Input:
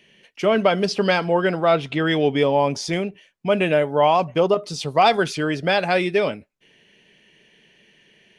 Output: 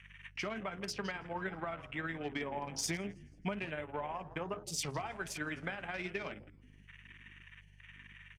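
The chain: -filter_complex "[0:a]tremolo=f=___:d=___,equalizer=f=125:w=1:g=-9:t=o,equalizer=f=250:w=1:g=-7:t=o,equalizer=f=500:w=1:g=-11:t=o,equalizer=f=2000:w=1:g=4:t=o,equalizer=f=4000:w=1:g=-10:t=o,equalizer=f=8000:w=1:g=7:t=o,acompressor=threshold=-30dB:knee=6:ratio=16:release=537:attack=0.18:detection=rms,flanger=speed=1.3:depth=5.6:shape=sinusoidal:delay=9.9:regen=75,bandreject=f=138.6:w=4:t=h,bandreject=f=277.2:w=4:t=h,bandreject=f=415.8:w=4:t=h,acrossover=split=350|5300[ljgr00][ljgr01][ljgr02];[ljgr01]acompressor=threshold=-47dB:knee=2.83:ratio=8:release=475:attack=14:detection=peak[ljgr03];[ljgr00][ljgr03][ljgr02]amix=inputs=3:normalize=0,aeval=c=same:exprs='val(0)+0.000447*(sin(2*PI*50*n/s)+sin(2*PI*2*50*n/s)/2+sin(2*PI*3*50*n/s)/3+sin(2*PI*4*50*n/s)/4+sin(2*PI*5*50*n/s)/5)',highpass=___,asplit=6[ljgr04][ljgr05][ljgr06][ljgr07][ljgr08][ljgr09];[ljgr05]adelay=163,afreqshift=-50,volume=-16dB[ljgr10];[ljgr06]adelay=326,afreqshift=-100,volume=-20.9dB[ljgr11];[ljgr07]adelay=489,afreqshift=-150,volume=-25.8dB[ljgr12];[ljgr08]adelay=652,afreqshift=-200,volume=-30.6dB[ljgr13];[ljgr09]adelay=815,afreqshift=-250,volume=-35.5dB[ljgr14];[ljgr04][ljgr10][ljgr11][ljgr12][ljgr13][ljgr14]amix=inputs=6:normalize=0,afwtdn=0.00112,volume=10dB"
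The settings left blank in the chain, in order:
19, 0.48, 41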